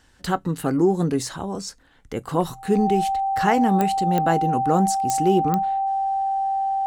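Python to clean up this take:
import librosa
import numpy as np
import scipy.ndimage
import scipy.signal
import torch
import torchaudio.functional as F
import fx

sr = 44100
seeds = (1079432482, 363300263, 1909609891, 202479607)

y = fx.fix_declick_ar(x, sr, threshold=10.0)
y = fx.notch(y, sr, hz=780.0, q=30.0)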